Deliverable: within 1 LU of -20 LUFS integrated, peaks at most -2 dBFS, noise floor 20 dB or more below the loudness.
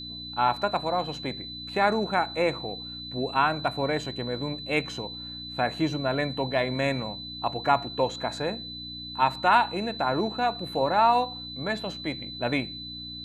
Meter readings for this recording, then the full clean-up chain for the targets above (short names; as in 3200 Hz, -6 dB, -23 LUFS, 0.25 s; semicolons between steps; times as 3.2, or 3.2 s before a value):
hum 60 Hz; harmonics up to 300 Hz; hum level -43 dBFS; steady tone 4000 Hz; tone level -37 dBFS; loudness -27.5 LUFS; peak -8.0 dBFS; loudness target -20.0 LUFS
-> de-hum 60 Hz, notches 5; notch 4000 Hz, Q 30; gain +7.5 dB; limiter -2 dBFS